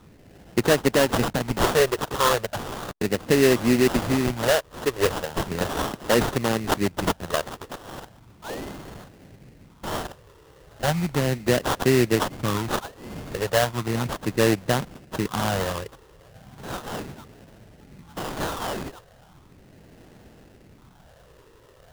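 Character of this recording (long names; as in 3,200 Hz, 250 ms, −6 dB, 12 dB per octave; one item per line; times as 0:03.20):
phaser sweep stages 8, 0.36 Hz, lowest notch 210–2,000 Hz
aliases and images of a low sample rate 2,300 Hz, jitter 20%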